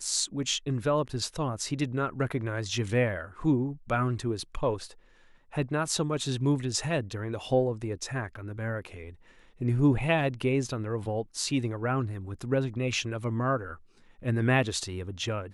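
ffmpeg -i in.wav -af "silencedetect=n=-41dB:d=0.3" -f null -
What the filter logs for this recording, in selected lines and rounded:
silence_start: 4.93
silence_end: 5.53 | silence_duration: 0.60
silence_start: 9.11
silence_end: 9.61 | silence_duration: 0.50
silence_start: 13.75
silence_end: 14.22 | silence_duration: 0.47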